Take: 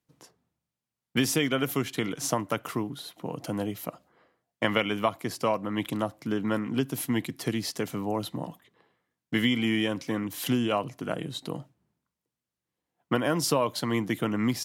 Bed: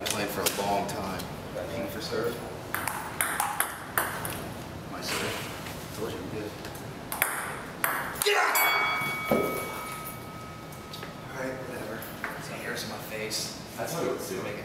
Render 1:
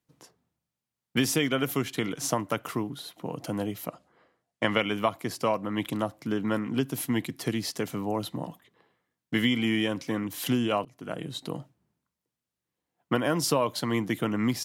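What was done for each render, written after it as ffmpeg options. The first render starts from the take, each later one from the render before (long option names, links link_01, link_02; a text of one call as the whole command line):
ffmpeg -i in.wav -filter_complex "[0:a]asettb=1/sr,asplit=3[link_01][link_02][link_03];[link_01]atrim=end=3.874[link_04];[link_02]atrim=start=3.87:end=4.8,asetpts=PTS-STARTPTS,afade=type=in:duration=0.004:curve=qsin,afade=type=out:start_time=0.926:duration=0.004:curve=qsin,lowpass=frequency=11000:width=0.5412,lowpass=frequency=11000:width=1.3066[link_05];[link_03]atrim=start=4.796[link_06];[link_04][link_05]acrossfade=duration=0.004:curve1=hsin:curve2=qsin[link_07];[link_07][link_06]acrossfade=duration=0.004:curve1=qsin:curve2=hsin,asplit=2[link_08][link_09];[link_08]atrim=end=10.85,asetpts=PTS-STARTPTS,afade=type=out:start_time=10.846:duration=0.004:curve=hsin:silence=0.1[link_10];[link_09]atrim=start=10.85,asetpts=PTS-STARTPTS,afade=type=in:duration=0.63:curve=qsin:silence=0.1[link_11];[link_10][link_11]concat=n=2:v=0:a=1" out.wav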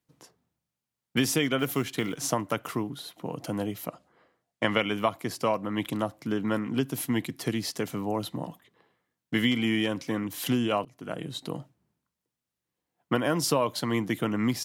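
ffmpeg -i in.wav -filter_complex "[0:a]asettb=1/sr,asplit=3[link_01][link_02][link_03];[link_01]atrim=end=1.594[link_04];[link_02]atrim=start=1.59:end=2.19,asetpts=PTS-STARTPTS,afade=type=in:duration=0.004:curve=qsin,afade=type=out:start_time=0.596:duration=0.004:curve=qsin,acrusher=bits=7:mode=log:mix=0:aa=0.000001[link_05];[link_03]atrim=start=2.186[link_06];[link_04][link_05]acrossfade=duration=0.004:curve1=hsin:curve2=qsin[link_07];[link_07][link_06]acrossfade=duration=0.004:curve1=qsin:curve2=hsin,asettb=1/sr,asplit=3[link_08][link_09][link_10];[link_08]atrim=end=9.514[link_11];[link_09]atrim=start=9.51:end=10.61,asetpts=PTS-STARTPTS,afade=type=in:duration=0.004:curve=qsin,afade=type=out:start_time=1.096:duration=0.004:curve=qsin,volume=17.5dB,asoftclip=hard,volume=-17.5dB[link_12];[link_10]atrim=start=10.606[link_13];[link_11][link_12]acrossfade=duration=0.004:curve1=hsin:curve2=qsin[link_14];[link_14][link_13]acrossfade=duration=0.004:curve1=qsin:curve2=hsin" out.wav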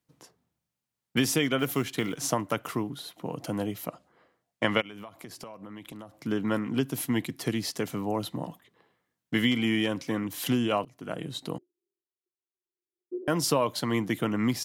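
ffmpeg -i in.wav -filter_complex "[0:a]asplit=3[link_01][link_02][link_03];[link_01]afade=type=out:start_time=4.8:duration=0.02[link_04];[link_02]acompressor=threshold=-39dB:ratio=10:attack=3.2:release=140:knee=1:detection=peak,afade=type=in:start_time=4.8:duration=0.02,afade=type=out:start_time=6.18:duration=0.02[link_05];[link_03]afade=type=in:start_time=6.18:duration=0.02[link_06];[link_04][link_05][link_06]amix=inputs=3:normalize=0,asettb=1/sr,asplit=3[link_07][link_08][link_09];[link_07]atrim=end=11.584[link_10];[link_08]atrim=start=11.58:end=13.28,asetpts=PTS-STARTPTS,afade=type=in:duration=0.004:curve=qsin,afade=type=out:start_time=1.696:duration=0.004:curve=qsin,asuperpass=centerf=370:order=4:qfactor=7[link_11];[link_09]atrim=start=13.276[link_12];[link_10][link_11]acrossfade=duration=0.004:curve1=hsin:curve2=qsin[link_13];[link_13][link_12]acrossfade=duration=0.004:curve1=qsin:curve2=hsin" out.wav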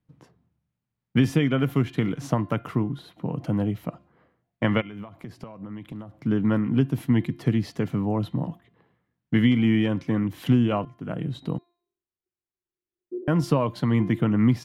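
ffmpeg -i in.wav -af "bass=frequency=250:gain=12,treble=frequency=4000:gain=-15,bandreject=frequency=347.3:width_type=h:width=4,bandreject=frequency=694.6:width_type=h:width=4,bandreject=frequency=1041.9:width_type=h:width=4,bandreject=frequency=1389.2:width_type=h:width=4,bandreject=frequency=1736.5:width_type=h:width=4,bandreject=frequency=2083.8:width_type=h:width=4,bandreject=frequency=2431.1:width_type=h:width=4,bandreject=frequency=2778.4:width_type=h:width=4,bandreject=frequency=3125.7:width_type=h:width=4,bandreject=frequency=3473:width_type=h:width=4,bandreject=frequency=3820.3:width_type=h:width=4,bandreject=frequency=4167.6:width_type=h:width=4,bandreject=frequency=4514.9:width_type=h:width=4" out.wav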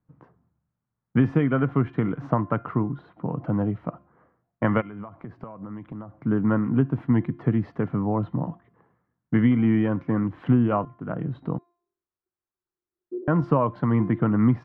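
ffmpeg -i in.wav -af "lowpass=frequency=1300:width_type=q:width=1.6" out.wav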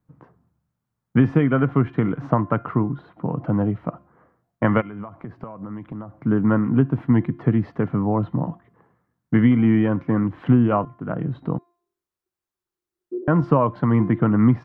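ffmpeg -i in.wav -af "volume=3.5dB" out.wav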